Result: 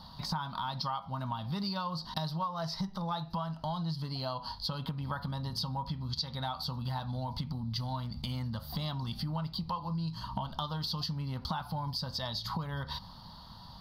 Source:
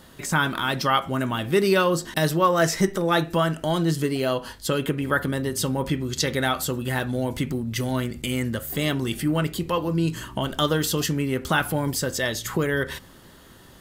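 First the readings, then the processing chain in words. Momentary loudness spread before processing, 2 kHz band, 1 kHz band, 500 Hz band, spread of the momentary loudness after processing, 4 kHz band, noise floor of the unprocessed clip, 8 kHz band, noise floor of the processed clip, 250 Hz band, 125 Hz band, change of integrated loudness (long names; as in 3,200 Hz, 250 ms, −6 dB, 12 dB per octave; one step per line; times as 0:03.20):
6 LU, −21.5 dB, −9.5 dB, −20.5 dB, 3 LU, −7.5 dB, −49 dBFS, −23.0 dB, −50 dBFS, −13.5 dB, −8.0 dB, −12.0 dB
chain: drawn EQ curve 200 Hz 0 dB, 370 Hz −24 dB, 940 Hz +7 dB, 1,700 Hz −15 dB, 2,500 Hz −16 dB, 4,600 Hz +9 dB, 7,400 Hz −28 dB, 11,000 Hz −16 dB
downward compressor 6 to 1, threshold −34 dBFS, peak gain reduction 18 dB
level +1 dB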